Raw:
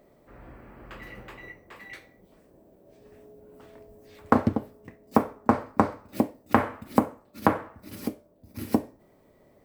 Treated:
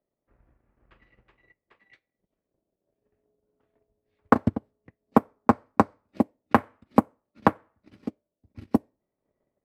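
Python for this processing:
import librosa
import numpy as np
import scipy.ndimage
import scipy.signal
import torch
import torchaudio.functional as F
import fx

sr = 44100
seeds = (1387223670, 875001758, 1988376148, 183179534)

y = fx.env_lowpass(x, sr, base_hz=2600.0, full_db=-18.5)
y = fx.transient(y, sr, attack_db=11, sustain_db=-10)
y = fx.band_widen(y, sr, depth_pct=40)
y = y * librosa.db_to_amplitude(-11.0)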